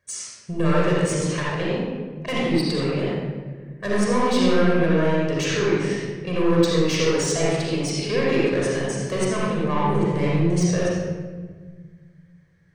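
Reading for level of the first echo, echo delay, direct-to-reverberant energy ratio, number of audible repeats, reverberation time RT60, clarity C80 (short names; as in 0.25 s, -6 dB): none, none, -5.5 dB, none, 1.5 s, -1.0 dB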